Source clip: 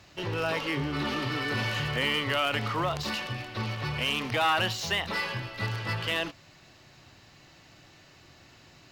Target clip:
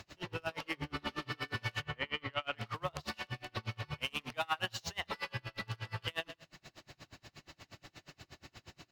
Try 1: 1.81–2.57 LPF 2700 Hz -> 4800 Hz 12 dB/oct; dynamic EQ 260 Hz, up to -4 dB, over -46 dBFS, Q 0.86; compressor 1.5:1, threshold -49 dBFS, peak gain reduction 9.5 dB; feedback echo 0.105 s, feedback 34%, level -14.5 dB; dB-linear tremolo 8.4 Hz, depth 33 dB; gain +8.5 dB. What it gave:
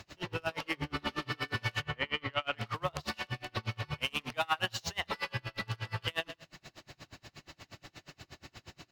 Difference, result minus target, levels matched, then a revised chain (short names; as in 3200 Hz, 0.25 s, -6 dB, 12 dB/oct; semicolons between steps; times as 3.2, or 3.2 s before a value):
compressor: peak gain reduction -3.5 dB
1.81–2.57 LPF 2700 Hz -> 4800 Hz 12 dB/oct; dynamic EQ 260 Hz, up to -4 dB, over -46 dBFS, Q 0.86; compressor 1.5:1, threshold -60 dBFS, peak gain reduction 13.5 dB; feedback echo 0.105 s, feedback 34%, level -14.5 dB; dB-linear tremolo 8.4 Hz, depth 33 dB; gain +8.5 dB